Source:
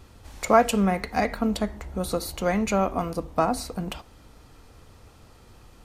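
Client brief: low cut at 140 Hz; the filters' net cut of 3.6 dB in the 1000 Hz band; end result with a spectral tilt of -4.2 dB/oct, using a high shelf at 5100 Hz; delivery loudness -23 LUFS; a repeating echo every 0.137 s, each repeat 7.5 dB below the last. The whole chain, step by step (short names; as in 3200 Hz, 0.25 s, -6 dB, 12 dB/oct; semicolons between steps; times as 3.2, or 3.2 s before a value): HPF 140 Hz; bell 1000 Hz -6 dB; high shelf 5100 Hz +6.5 dB; feedback echo 0.137 s, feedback 42%, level -7.5 dB; gain +3 dB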